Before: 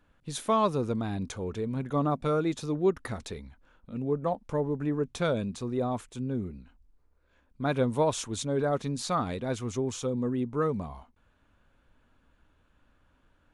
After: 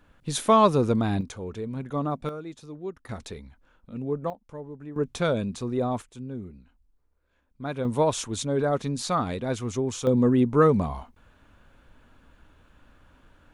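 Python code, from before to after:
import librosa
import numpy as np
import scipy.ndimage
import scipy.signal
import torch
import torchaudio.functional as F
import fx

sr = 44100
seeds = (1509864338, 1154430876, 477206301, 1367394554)

y = fx.gain(x, sr, db=fx.steps((0.0, 7.0), (1.21, -1.0), (2.29, -10.0), (3.09, 0.0), (4.3, -10.0), (4.96, 3.0), (6.02, -4.0), (7.85, 3.0), (10.07, 9.5)))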